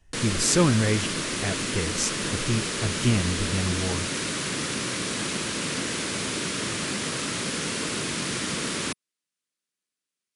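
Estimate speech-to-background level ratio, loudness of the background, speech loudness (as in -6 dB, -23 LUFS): 1.0 dB, -27.5 LUFS, -26.5 LUFS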